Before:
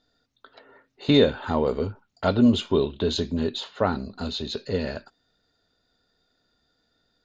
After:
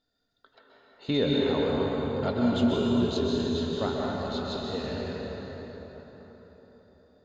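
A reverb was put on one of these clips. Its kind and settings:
dense smooth reverb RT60 4.7 s, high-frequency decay 0.6×, pre-delay 115 ms, DRR −4 dB
level −9 dB

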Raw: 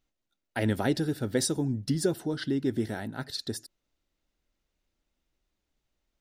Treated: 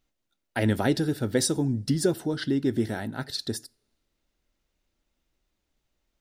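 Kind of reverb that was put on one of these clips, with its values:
coupled-rooms reverb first 0.31 s, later 1.6 s, from −26 dB, DRR 20 dB
level +3 dB

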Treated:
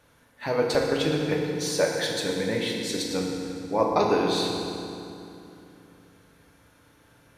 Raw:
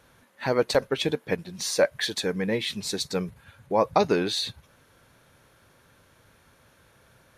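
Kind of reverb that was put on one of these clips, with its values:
feedback delay network reverb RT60 2.8 s, low-frequency decay 1.35×, high-frequency decay 0.75×, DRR −1.5 dB
level −3.5 dB

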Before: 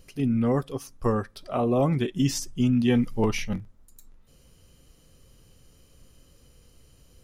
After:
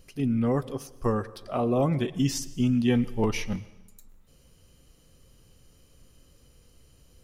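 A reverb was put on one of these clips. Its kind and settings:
dense smooth reverb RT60 1 s, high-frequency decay 0.95×, pre-delay 95 ms, DRR 18.5 dB
level −1.5 dB

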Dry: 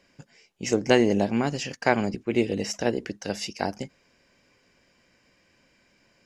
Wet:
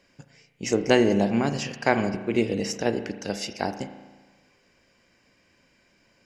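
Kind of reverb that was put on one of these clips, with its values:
spring reverb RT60 1.3 s, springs 35 ms, chirp 50 ms, DRR 9.5 dB

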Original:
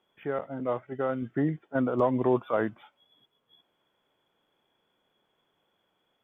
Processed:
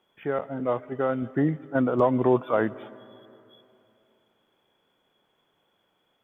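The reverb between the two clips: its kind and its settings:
comb and all-pass reverb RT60 3 s, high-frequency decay 0.65×, pre-delay 75 ms, DRR 20 dB
level +3.5 dB

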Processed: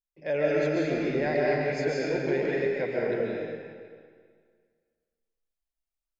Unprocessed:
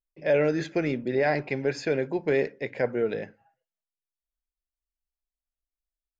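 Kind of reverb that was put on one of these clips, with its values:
comb and all-pass reverb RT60 1.9 s, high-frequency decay 0.9×, pre-delay 100 ms, DRR −5 dB
level −6.5 dB

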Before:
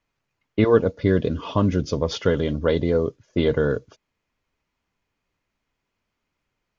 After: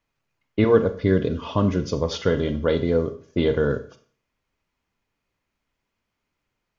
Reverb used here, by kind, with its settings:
four-comb reverb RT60 0.46 s, combs from 28 ms, DRR 9.5 dB
level −1 dB

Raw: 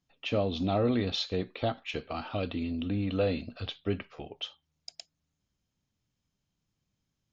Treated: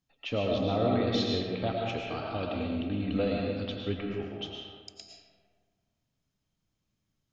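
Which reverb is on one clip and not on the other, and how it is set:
comb and all-pass reverb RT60 1.7 s, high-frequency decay 0.5×, pre-delay 70 ms, DRR −1 dB
level −2.5 dB

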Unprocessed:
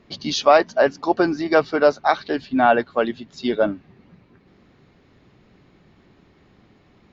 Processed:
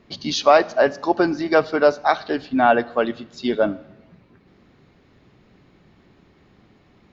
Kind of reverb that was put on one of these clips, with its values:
four-comb reverb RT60 0.94 s, combs from 26 ms, DRR 19 dB

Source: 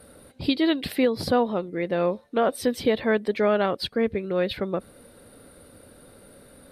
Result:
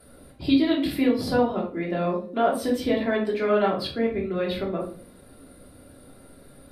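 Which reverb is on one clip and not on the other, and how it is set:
rectangular room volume 380 cubic metres, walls furnished, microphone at 3.1 metres
level −6 dB

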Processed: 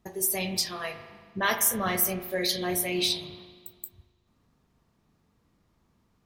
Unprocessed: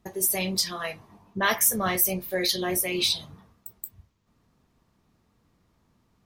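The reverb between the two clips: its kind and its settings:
spring reverb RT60 1.5 s, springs 39 ms, chirp 45 ms, DRR 9 dB
level −2.5 dB

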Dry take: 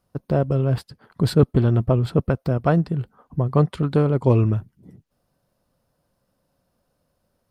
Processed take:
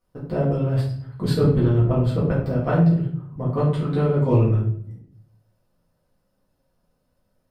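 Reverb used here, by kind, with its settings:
rectangular room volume 83 cubic metres, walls mixed, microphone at 1.9 metres
level −10 dB

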